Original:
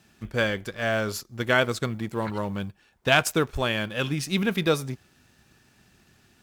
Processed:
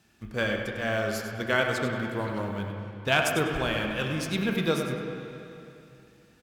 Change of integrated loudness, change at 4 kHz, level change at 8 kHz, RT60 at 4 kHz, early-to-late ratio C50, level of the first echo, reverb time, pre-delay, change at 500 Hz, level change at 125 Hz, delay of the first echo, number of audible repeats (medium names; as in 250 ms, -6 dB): -2.5 dB, -3.0 dB, -4.0 dB, 2.6 s, 2.5 dB, -9.0 dB, 2.8 s, 8 ms, -2.0 dB, -2.0 dB, 99 ms, 1